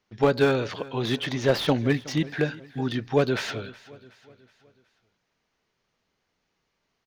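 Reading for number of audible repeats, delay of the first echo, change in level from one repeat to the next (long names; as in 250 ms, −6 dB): 3, 370 ms, −6.5 dB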